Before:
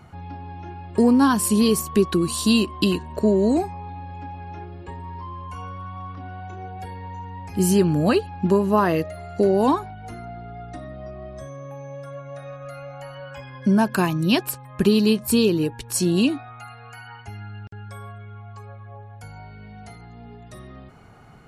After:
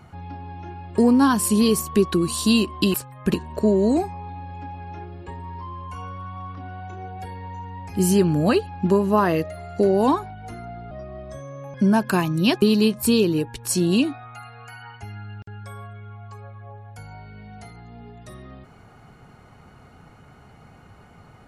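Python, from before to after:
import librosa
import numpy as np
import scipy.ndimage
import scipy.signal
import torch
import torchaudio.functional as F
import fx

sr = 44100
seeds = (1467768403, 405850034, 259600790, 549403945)

y = fx.edit(x, sr, fx.cut(start_s=10.51, length_s=0.47),
    fx.cut(start_s=11.81, length_s=1.78),
    fx.move(start_s=14.47, length_s=0.4, to_s=2.94), tone=tone)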